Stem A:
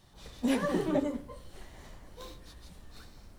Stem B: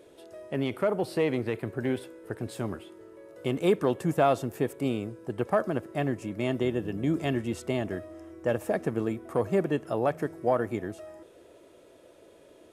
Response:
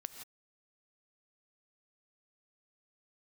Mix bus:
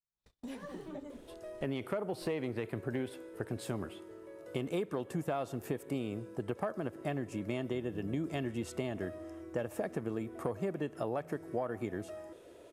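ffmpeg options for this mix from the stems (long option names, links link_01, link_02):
-filter_complex "[0:a]agate=range=-40dB:threshold=-43dB:ratio=16:detection=peak,acompressor=threshold=-44dB:ratio=2,volume=-5.5dB[link_01];[1:a]adelay=1100,volume=-2dB,asplit=2[link_02][link_03];[link_03]volume=-14.5dB[link_04];[2:a]atrim=start_sample=2205[link_05];[link_04][link_05]afir=irnorm=-1:irlink=0[link_06];[link_01][link_02][link_06]amix=inputs=3:normalize=0,acompressor=threshold=-32dB:ratio=6"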